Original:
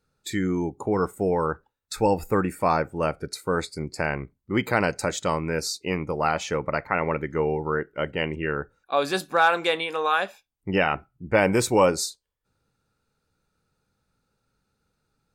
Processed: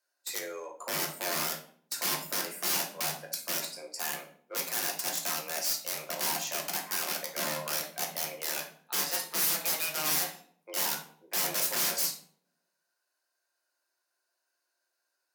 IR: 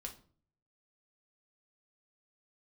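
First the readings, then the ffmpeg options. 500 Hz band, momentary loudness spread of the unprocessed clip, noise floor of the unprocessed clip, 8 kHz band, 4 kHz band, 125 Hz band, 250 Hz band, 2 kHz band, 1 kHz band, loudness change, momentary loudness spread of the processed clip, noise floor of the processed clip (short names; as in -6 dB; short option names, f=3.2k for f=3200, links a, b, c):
-16.5 dB, 9 LU, -78 dBFS, +5.0 dB, +0.5 dB, -19.5 dB, -18.5 dB, -9.0 dB, -13.0 dB, -5.5 dB, 9 LU, -82 dBFS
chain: -filter_complex "[0:a]highpass=540,asplit=2[a][b];[b]acrusher=bits=3:mix=0:aa=0.5,volume=-8dB[c];[a][c]amix=inputs=2:normalize=0,aeval=exprs='(mod(10.6*val(0)+1,2)-1)/10.6':c=same,aexciter=amount=1.7:drive=7.1:freq=4.6k,afreqshift=150[d];[1:a]atrim=start_sample=2205,asetrate=32193,aresample=44100[e];[d][e]afir=irnorm=-1:irlink=0,volume=-3.5dB"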